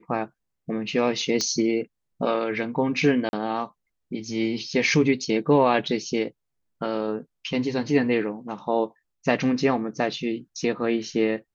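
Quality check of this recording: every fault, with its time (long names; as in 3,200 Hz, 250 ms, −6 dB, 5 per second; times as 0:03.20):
0:01.41: click −12 dBFS
0:03.29–0:03.33: drop-out 41 ms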